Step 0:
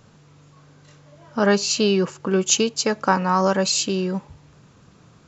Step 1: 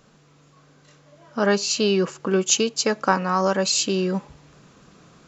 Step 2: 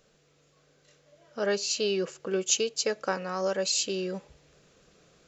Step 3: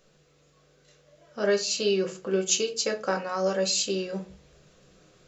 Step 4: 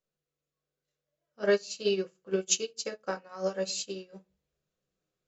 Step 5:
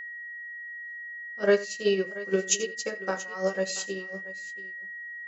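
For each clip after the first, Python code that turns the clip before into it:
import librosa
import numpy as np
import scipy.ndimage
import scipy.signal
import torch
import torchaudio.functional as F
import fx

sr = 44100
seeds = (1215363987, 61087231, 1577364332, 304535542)

y1 = fx.rider(x, sr, range_db=10, speed_s=0.5)
y1 = fx.peak_eq(y1, sr, hz=95.0, db=-13.5, octaves=0.85)
y1 = fx.notch(y1, sr, hz=900.0, q=15.0)
y2 = fx.graphic_eq(y1, sr, hz=(125, 250, 500, 1000), db=(-6, -9, 5, -10))
y2 = F.gain(torch.from_numpy(y2), -5.5).numpy()
y3 = fx.room_shoebox(y2, sr, seeds[0], volume_m3=130.0, walls='furnished', distance_m=1.0)
y4 = fx.upward_expand(y3, sr, threshold_db=-39.0, expansion=2.5)
y5 = y4 + 10.0 ** (-40.0 / 20.0) * np.sin(2.0 * np.pi * 1900.0 * np.arange(len(y4)) / sr)
y5 = fx.dynamic_eq(y5, sr, hz=4200.0, q=1.6, threshold_db=-47.0, ratio=4.0, max_db=-5)
y5 = fx.echo_multitap(y5, sr, ms=(86, 682), db=(-18.0, -17.5))
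y5 = F.gain(torch.from_numpy(y5), 3.5).numpy()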